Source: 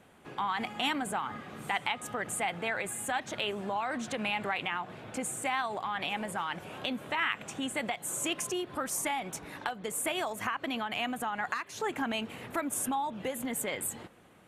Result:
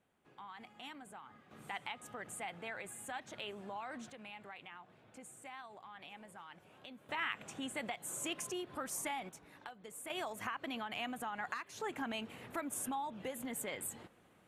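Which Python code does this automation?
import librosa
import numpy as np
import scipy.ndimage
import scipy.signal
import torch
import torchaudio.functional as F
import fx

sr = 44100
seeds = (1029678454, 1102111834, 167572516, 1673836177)

y = fx.gain(x, sr, db=fx.steps((0.0, -19.0), (1.51, -11.5), (4.1, -18.5), (7.09, -7.5), (9.29, -15.0), (10.1, -7.5)))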